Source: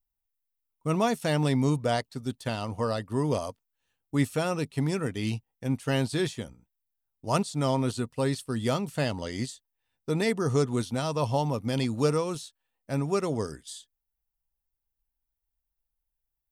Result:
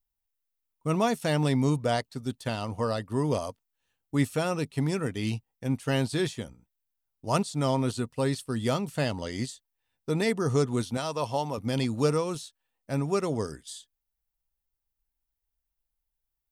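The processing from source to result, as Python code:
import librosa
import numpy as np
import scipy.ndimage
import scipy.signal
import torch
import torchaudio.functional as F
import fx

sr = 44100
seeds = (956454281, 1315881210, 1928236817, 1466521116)

y = fx.low_shelf(x, sr, hz=230.0, db=-11.0, at=(10.97, 11.58))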